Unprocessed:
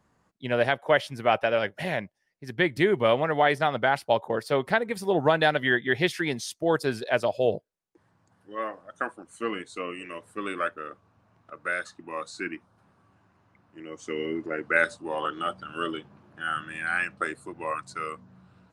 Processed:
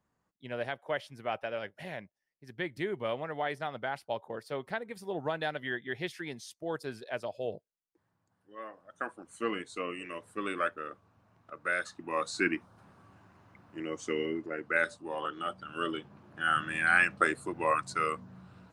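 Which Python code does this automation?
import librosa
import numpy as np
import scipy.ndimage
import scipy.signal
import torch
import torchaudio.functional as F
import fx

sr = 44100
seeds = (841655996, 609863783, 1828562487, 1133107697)

y = fx.gain(x, sr, db=fx.line((8.63, -12.0), (9.29, -2.5), (11.66, -2.5), (12.43, 4.5), (13.83, 4.5), (14.48, -6.0), (15.44, -6.0), (16.68, 3.0)))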